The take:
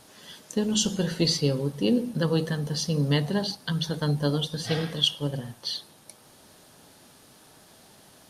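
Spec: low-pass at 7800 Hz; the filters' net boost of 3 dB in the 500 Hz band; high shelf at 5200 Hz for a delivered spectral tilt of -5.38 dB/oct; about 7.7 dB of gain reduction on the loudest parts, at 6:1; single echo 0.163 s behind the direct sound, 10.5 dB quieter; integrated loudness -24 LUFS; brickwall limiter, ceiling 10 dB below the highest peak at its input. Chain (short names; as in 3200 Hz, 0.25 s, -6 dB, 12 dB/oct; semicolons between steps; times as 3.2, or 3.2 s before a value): LPF 7800 Hz; bell 500 Hz +3.5 dB; high shelf 5200 Hz -4 dB; compressor 6:1, threshold -25 dBFS; limiter -24.5 dBFS; echo 0.163 s -10.5 dB; gain +9.5 dB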